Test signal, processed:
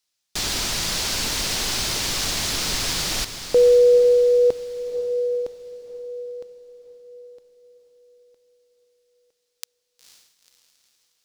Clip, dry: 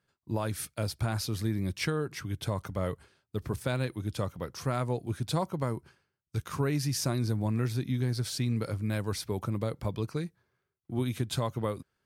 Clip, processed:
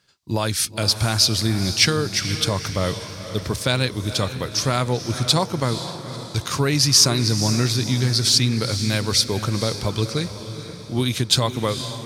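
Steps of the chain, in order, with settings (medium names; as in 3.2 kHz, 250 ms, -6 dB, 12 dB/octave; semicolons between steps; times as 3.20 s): peaking EQ 4.9 kHz +14 dB 1.9 oct; on a send: echo that smears into a reverb 487 ms, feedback 48%, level -10.5 dB; on the sum: trim +8 dB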